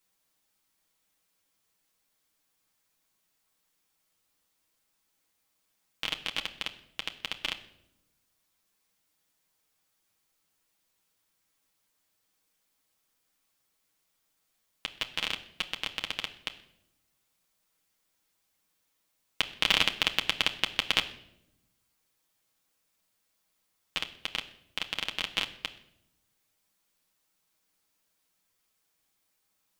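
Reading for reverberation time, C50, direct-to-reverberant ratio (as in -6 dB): 0.80 s, 14.5 dB, 3.0 dB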